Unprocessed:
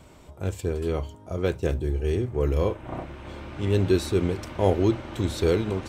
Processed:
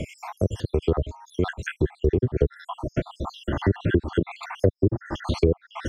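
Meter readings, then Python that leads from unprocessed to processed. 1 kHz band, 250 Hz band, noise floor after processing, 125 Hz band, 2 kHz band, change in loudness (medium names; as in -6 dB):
+0.5 dB, +0.5 dB, -64 dBFS, +1.0 dB, +4.0 dB, 0.0 dB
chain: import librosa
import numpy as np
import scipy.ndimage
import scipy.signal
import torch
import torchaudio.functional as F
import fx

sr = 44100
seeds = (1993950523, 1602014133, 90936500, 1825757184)

y = fx.spec_dropout(x, sr, seeds[0], share_pct=70)
y = fx.env_lowpass_down(y, sr, base_hz=410.0, full_db=-20.5)
y = fx.band_squash(y, sr, depth_pct=70)
y = F.gain(torch.from_numpy(y), 7.0).numpy()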